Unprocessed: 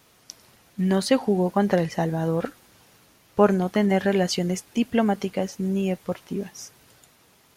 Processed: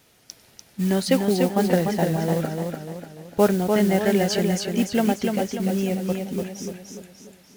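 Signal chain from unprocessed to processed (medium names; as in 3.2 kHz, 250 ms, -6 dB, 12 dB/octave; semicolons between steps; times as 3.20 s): peaking EQ 1.1 kHz -7.5 dB 0.4 oct; modulation noise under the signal 19 dB; modulated delay 295 ms, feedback 46%, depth 57 cents, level -4.5 dB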